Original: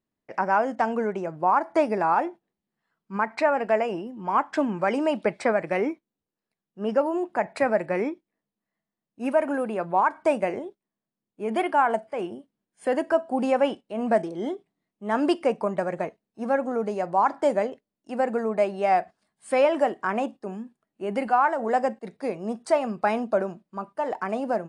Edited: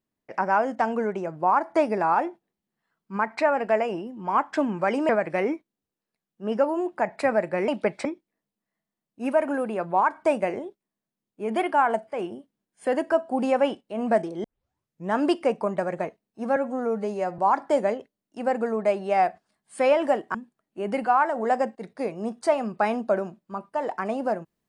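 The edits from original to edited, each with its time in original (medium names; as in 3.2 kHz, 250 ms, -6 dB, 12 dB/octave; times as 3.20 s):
5.09–5.46 s: move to 8.05 s
14.44 s: tape start 0.70 s
16.56–17.11 s: stretch 1.5×
20.07–20.58 s: delete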